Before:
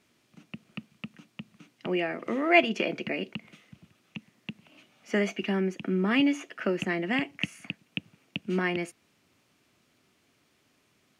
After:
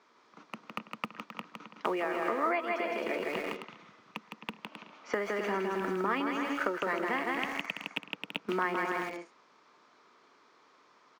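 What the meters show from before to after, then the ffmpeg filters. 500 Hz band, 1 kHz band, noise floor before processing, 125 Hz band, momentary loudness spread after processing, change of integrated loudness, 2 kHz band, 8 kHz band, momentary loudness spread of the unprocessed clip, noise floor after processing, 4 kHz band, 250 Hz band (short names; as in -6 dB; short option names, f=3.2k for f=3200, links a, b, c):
-3.0 dB, +2.5 dB, -69 dBFS, -11.5 dB, 15 LU, -5.0 dB, -3.5 dB, -4.5 dB, 22 LU, -64 dBFS, -6.0 dB, -8.0 dB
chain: -filter_complex "[0:a]highpass=320,equalizer=f=460:t=q:w=4:g=6,equalizer=f=940:t=q:w=4:g=8,equalizer=f=2.8k:t=q:w=4:g=-7,lowpass=f=5.8k:w=0.5412,lowpass=f=5.8k:w=1.3066,aecho=1:1:160|264|331.6|375.5|404.1:0.631|0.398|0.251|0.158|0.1,asplit=2[a][b];[b]aeval=exprs='val(0)*gte(abs(val(0)),0.0188)':c=same,volume=-6.5dB[c];[a][c]amix=inputs=2:normalize=0,acompressor=threshold=-31dB:ratio=16,equalizer=f=1.2k:t=o:w=0.72:g=10,volume=1dB"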